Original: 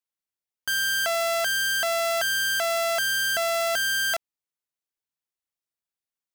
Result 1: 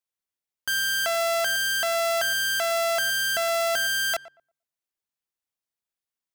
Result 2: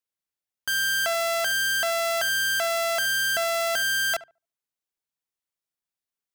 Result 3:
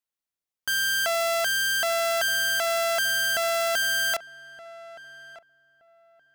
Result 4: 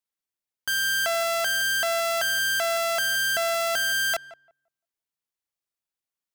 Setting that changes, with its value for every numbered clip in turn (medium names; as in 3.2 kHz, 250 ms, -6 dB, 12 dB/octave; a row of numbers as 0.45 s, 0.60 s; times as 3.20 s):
filtered feedback delay, time: 116 ms, 72 ms, 1221 ms, 172 ms